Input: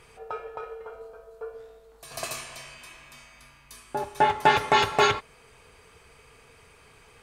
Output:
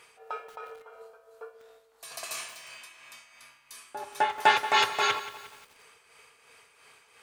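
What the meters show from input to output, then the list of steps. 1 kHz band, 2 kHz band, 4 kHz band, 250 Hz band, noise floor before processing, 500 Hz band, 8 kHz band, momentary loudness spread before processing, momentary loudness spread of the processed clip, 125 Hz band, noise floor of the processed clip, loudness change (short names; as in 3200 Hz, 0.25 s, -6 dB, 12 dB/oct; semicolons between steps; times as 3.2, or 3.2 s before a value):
-3.0 dB, -1.0 dB, 0.0 dB, -11.0 dB, -56 dBFS, -8.0 dB, -0.5 dB, 21 LU, 22 LU, under -15 dB, -63 dBFS, -2.5 dB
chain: HPF 1000 Hz 6 dB/oct; tremolo 2.9 Hz, depth 52%; lo-fi delay 0.178 s, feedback 55%, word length 7-bit, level -14 dB; gain +2 dB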